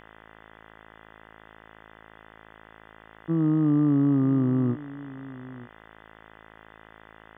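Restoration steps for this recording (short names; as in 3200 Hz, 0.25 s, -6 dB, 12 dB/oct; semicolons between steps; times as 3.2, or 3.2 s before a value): de-hum 54.3 Hz, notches 37; denoiser 19 dB, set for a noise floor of -51 dBFS; inverse comb 0.921 s -18 dB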